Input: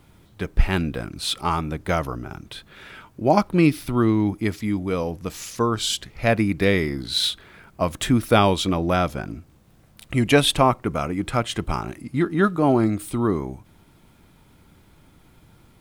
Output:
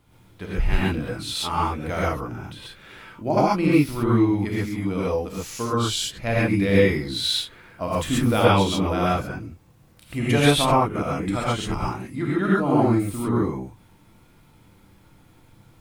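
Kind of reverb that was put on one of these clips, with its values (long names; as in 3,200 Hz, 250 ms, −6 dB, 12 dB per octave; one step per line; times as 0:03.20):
reverb whose tail is shaped and stops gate 160 ms rising, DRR −7 dB
level −8 dB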